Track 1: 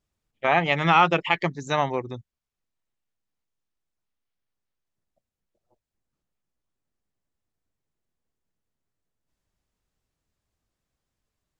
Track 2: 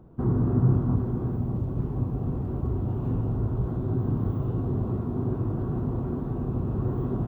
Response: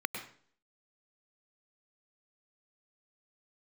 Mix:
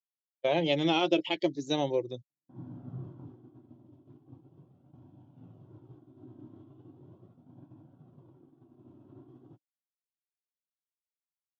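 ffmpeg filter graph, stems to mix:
-filter_complex "[0:a]firequalizer=gain_entry='entry(180,0);entry(1200,-15);entry(4600,2)':delay=0.05:min_phase=1,volume=1.19[s0];[1:a]equalizer=f=480:w=1.9:g=-14.5,adelay=2300,volume=0.266[s1];[s0][s1]amix=inputs=2:normalize=0,agate=range=0.0224:threshold=0.0224:ratio=3:detection=peak,flanger=delay=1.2:depth=1.9:regen=-41:speed=0.39:shape=sinusoidal,highpass=f=140:w=0.5412,highpass=f=140:w=1.3066,equalizer=f=210:t=q:w=4:g=-8,equalizer=f=310:t=q:w=4:g=10,equalizer=f=550:t=q:w=4:g=9,equalizer=f=1200:t=q:w=4:g=-6,equalizer=f=1800:t=q:w=4:g=-5,equalizer=f=3300:t=q:w=4:g=8,lowpass=f=6300:w=0.5412,lowpass=f=6300:w=1.3066"

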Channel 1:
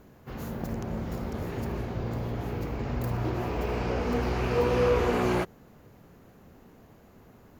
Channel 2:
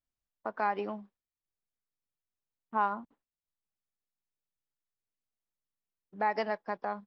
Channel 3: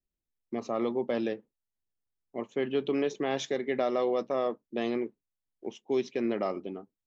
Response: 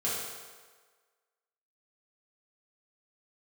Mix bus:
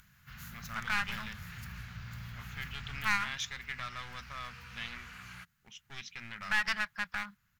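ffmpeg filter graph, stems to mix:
-filter_complex "[0:a]acompressor=mode=upward:threshold=0.00447:ratio=2.5,volume=0.299,afade=t=out:st=2.91:d=0.36:silence=0.281838[s0];[1:a]adelay=300,volume=1.12[s1];[2:a]agate=range=0.0224:threshold=0.00501:ratio=3:detection=peak,volume=0.398[s2];[s0][s1][s2]amix=inputs=3:normalize=0,aeval=exprs='clip(val(0),-1,0.0126)':c=same,firequalizer=gain_entry='entry(170,0);entry(320,-29);entry(1400,9)':delay=0.05:min_phase=1"

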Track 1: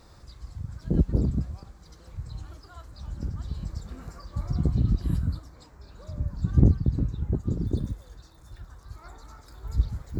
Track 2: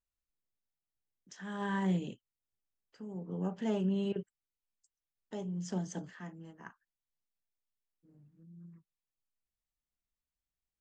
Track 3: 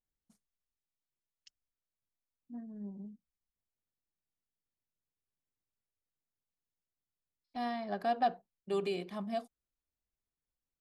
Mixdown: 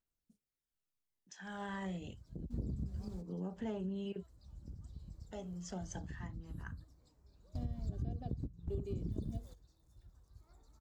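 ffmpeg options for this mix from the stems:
-filter_complex "[0:a]equalizer=f=1500:t=o:w=1.9:g=-11,acompressor=threshold=0.0562:ratio=6,adelay=1450,volume=1.33[s0];[1:a]aphaser=in_gain=1:out_gain=1:delay=1.6:decay=0.44:speed=0.27:type=triangular,lowshelf=f=150:g=-6,volume=0.668[s1];[2:a]firequalizer=gain_entry='entry(450,0);entry(900,-23);entry(3200,-12)':delay=0.05:min_phase=1,volume=1,asplit=2[s2][s3];[s3]apad=whole_len=513656[s4];[s0][s4]sidechaingate=range=0.112:threshold=0.00126:ratio=16:detection=peak[s5];[s5][s1][s2]amix=inputs=3:normalize=0,acompressor=threshold=0.0126:ratio=4"

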